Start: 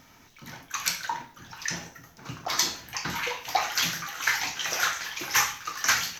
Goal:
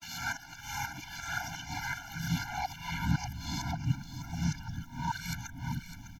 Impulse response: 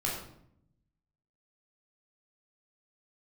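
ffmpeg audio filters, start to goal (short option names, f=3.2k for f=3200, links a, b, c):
-filter_complex "[0:a]areverse,acrossover=split=1300[a][b];[a]alimiter=limit=-23.5dB:level=0:latency=1:release=292[c];[b]acompressor=threshold=-38dB:ratio=6[d];[c][d]amix=inputs=2:normalize=0,asubboost=boost=8:cutoff=180,asplit=2[e][f];[f]aecho=0:1:604:0.282[g];[e][g]amix=inputs=2:normalize=0,afftfilt=real='re*eq(mod(floor(b*sr/1024/340),2),0)':imag='im*eq(mod(floor(b*sr/1024/340),2),0)':win_size=1024:overlap=0.75"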